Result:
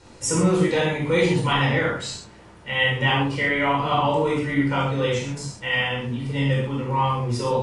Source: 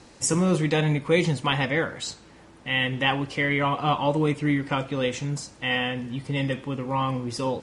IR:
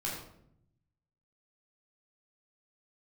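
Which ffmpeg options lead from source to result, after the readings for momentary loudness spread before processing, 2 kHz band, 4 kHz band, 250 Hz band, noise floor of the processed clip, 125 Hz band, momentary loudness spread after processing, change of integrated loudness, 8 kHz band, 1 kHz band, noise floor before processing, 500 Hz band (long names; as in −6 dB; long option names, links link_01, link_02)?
8 LU, +3.5 dB, +2.5 dB, +1.5 dB, −47 dBFS, +3.0 dB, 8 LU, +3.0 dB, +1.0 dB, +4.0 dB, −50 dBFS, +3.5 dB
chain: -filter_complex "[1:a]atrim=start_sample=2205,atrim=end_sample=3969,asetrate=27342,aresample=44100[link_01];[0:a][link_01]afir=irnorm=-1:irlink=0,volume=-3dB"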